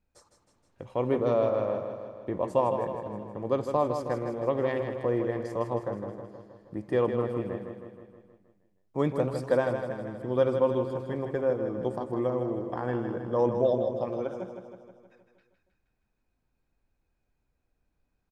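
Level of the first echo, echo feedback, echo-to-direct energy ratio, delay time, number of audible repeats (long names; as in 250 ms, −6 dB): −7.5 dB, 59%, −5.5 dB, 158 ms, 7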